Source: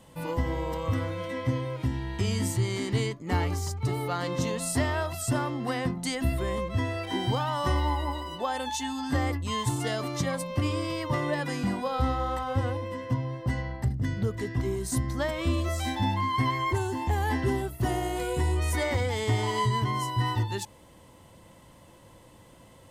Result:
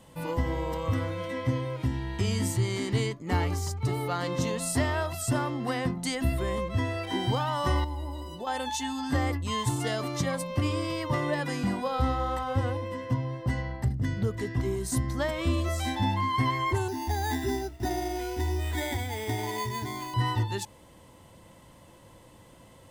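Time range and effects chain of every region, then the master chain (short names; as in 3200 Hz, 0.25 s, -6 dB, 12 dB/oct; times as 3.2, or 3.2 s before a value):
7.84–8.47 bell 1700 Hz -11.5 dB 2.2 oct + compressor 2.5:1, threshold -33 dBFS + flutter echo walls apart 11.5 m, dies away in 0.24 s
16.88–20.14 air absorption 79 m + fixed phaser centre 780 Hz, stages 8 + careless resampling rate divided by 8×, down none, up hold
whole clip: dry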